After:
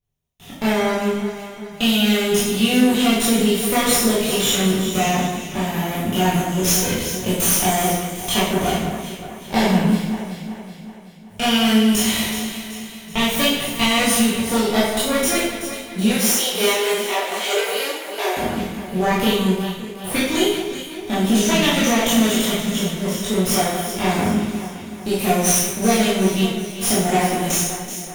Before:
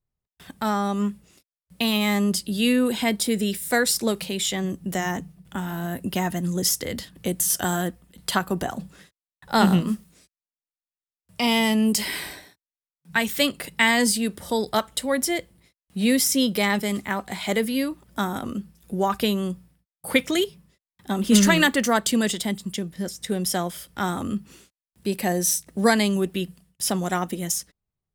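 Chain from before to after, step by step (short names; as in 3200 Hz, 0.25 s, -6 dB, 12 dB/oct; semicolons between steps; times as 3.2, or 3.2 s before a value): minimum comb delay 0.31 ms; compressor, threshold -21 dBFS, peak gain reduction 9.5 dB; 16.1–18.37 steep high-pass 340 Hz 72 dB/oct; echo with dull and thin repeats by turns 0.189 s, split 2100 Hz, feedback 70%, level -7 dB; reverb RT60 0.75 s, pre-delay 14 ms, DRR -9 dB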